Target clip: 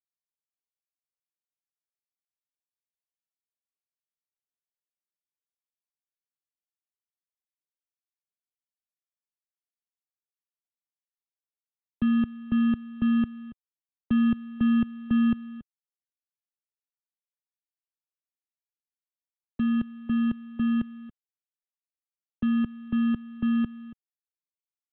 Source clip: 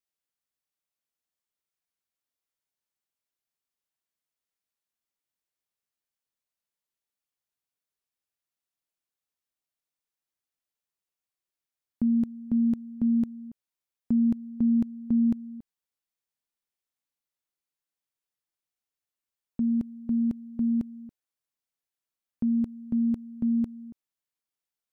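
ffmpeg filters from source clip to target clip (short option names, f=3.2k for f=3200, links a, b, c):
-filter_complex "[0:a]acrossover=split=150|250[a][b][c];[a]acontrast=46[d];[b]acrusher=samples=30:mix=1:aa=0.000001[e];[d][e][c]amix=inputs=3:normalize=0" -ar 8000 -c:a adpcm_g726 -b:a 40k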